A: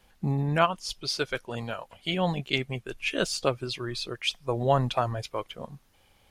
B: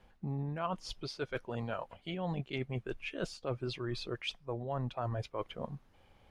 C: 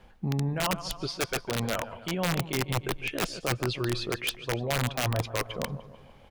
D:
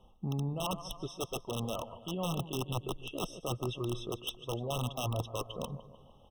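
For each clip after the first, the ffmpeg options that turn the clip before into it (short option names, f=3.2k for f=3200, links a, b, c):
-af "lowpass=f=1.4k:p=1,areverse,acompressor=threshold=-34dB:ratio=10,areverse,volume=1dB"
-af "aecho=1:1:150|300|450|600|750:0.178|0.0978|0.0538|0.0296|0.0163,aeval=exprs='(mod(25.1*val(0)+1,2)-1)/25.1':c=same,volume=8dB"
-af "afftfilt=real='re*eq(mod(floor(b*sr/1024/1300),2),0)':imag='im*eq(mod(floor(b*sr/1024/1300),2),0)':win_size=1024:overlap=0.75,volume=-5.5dB"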